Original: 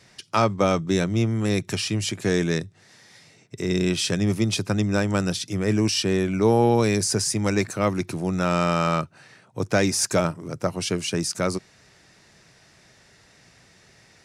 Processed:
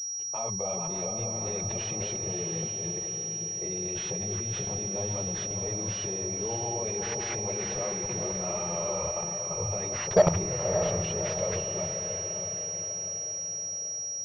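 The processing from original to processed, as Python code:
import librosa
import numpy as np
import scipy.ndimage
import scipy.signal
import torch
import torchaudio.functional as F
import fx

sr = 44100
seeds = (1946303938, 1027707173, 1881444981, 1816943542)

p1 = fx.reverse_delay(x, sr, ms=298, wet_db=-12.0)
p2 = fx.chorus_voices(p1, sr, voices=6, hz=0.81, base_ms=18, depth_ms=4.2, mix_pct=65)
p3 = fx.hum_notches(p2, sr, base_hz=50, count=6)
p4 = fx.env_lowpass(p3, sr, base_hz=1100.0, full_db=-23.5)
p5 = fx.level_steps(p4, sr, step_db=19)
p6 = fx.transient(p5, sr, attack_db=0, sustain_db=7)
p7 = fx.fixed_phaser(p6, sr, hz=630.0, stages=4)
p8 = 10.0 ** (-17.5 / 20.0) * np.tanh(p7 / 10.0 ** (-17.5 / 20.0))
p9 = p8 + fx.echo_diffused(p8, sr, ms=602, feedback_pct=54, wet_db=-6, dry=0)
p10 = fx.pwm(p9, sr, carrier_hz=5700.0)
y = p10 * 10.0 ** (7.5 / 20.0)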